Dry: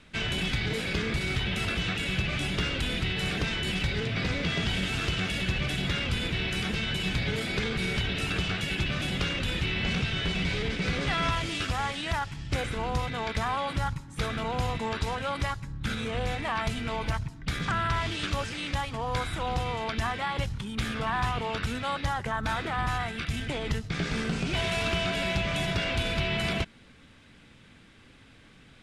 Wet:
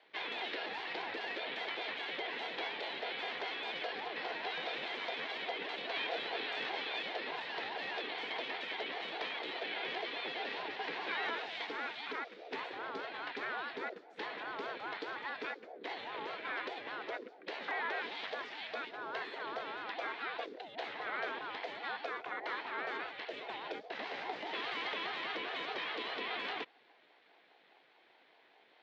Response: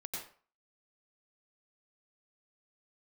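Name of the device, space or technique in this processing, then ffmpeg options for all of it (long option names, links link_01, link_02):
voice changer toy: -filter_complex "[0:a]asettb=1/sr,asplit=3[link_01][link_02][link_03];[link_01]atrim=end=5.924[link_04];[link_02]atrim=start=5.92:end=7.03,asetpts=PTS-STARTPTS,afade=type=in:duration=0.004:curve=qsin,afade=type=out:start_time=1.106:duration=0.004:curve=qsin,asplit=2[link_05][link_06];[link_06]adelay=25,volume=-2dB[link_07];[link_05][link_07]amix=inputs=2:normalize=0,atrim=end_sample=48951[link_08];[link_03]atrim=start=7.026[link_09];[link_04][link_08]acrossfade=duration=0.004:curve1=hsin:curve2=qsin[link_10];[link_10][link_09]acrossfade=duration=0.004:curve1=qsin:curve2=hsin,aeval=exprs='val(0)*sin(2*PI*470*n/s+470*0.3/4.9*sin(2*PI*4.9*n/s))':channel_layout=same,highpass=560,equalizer=frequency=570:width_type=q:width=4:gain=-9,equalizer=frequency=1200:width_type=q:width=4:gain=-5,equalizer=frequency=2800:width_type=q:width=4:gain=-5,lowpass=frequency=3800:width=0.5412,lowpass=frequency=3800:width=1.3066,volume=-3dB"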